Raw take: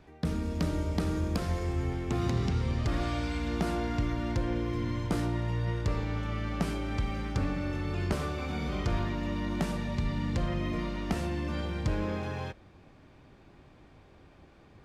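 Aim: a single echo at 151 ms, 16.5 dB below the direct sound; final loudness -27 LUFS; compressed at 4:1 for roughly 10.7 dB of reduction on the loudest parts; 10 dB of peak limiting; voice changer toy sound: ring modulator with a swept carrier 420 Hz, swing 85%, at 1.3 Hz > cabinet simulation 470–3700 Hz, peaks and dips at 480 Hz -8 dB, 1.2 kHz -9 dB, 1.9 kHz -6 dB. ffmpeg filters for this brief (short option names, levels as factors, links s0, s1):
-af "acompressor=threshold=0.0126:ratio=4,alimiter=level_in=2.99:limit=0.0631:level=0:latency=1,volume=0.335,aecho=1:1:151:0.15,aeval=exprs='val(0)*sin(2*PI*420*n/s+420*0.85/1.3*sin(2*PI*1.3*n/s))':c=same,highpass=470,equalizer=f=480:t=q:w=4:g=-8,equalizer=f=1200:t=q:w=4:g=-9,equalizer=f=1900:t=q:w=4:g=-6,lowpass=f=3700:w=0.5412,lowpass=f=3700:w=1.3066,volume=15"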